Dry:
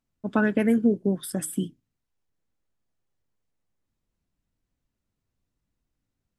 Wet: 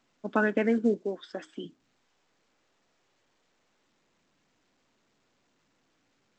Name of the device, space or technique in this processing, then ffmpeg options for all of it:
telephone: -filter_complex "[0:a]asplit=3[link_01][link_02][link_03];[link_01]afade=type=out:start_time=1.02:duration=0.02[link_04];[link_02]equalizer=frequency=150:width_type=o:width=1.3:gain=-15,afade=type=in:start_time=1.02:duration=0.02,afade=type=out:start_time=1.63:duration=0.02[link_05];[link_03]afade=type=in:start_time=1.63:duration=0.02[link_06];[link_04][link_05][link_06]amix=inputs=3:normalize=0,highpass=290,lowpass=3300" -ar 16000 -c:a pcm_alaw

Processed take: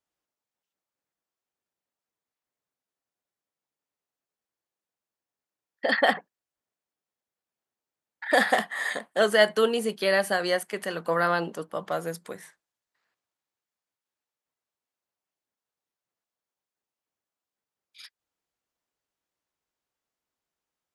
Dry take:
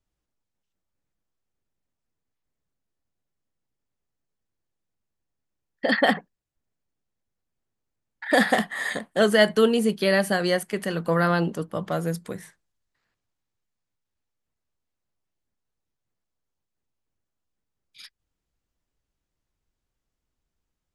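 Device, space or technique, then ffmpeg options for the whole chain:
filter by subtraction: -filter_complex "[0:a]asplit=2[link_01][link_02];[link_02]lowpass=750,volume=-1[link_03];[link_01][link_03]amix=inputs=2:normalize=0,volume=-2dB"

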